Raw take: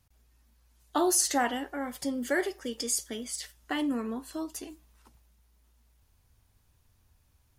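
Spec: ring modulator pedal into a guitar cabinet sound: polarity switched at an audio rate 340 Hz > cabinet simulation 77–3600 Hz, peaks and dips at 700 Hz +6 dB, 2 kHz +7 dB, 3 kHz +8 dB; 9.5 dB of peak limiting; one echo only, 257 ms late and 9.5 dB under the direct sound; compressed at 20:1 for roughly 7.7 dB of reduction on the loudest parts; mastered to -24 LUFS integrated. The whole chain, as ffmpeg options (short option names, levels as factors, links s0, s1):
-af "acompressor=threshold=0.0355:ratio=20,alimiter=level_in=1.5:limit=0.0631:level=0:latency=1,volume=0.668,aecho=1:1:257:0.335,aeval=exprs='val(0)*sgn(sin(2*PI*340*n/s))':c=same,highpass=77,equalizer=f=700:t=q:w=4:g=6,equalizer=f=2000:t=q:w=4:g=7,equalizer=f=3000:t=q:w=4:g=8,lowpass=f=3600:w=0.5412,lowpass=f=3600:w=1.3066,volume=3.76"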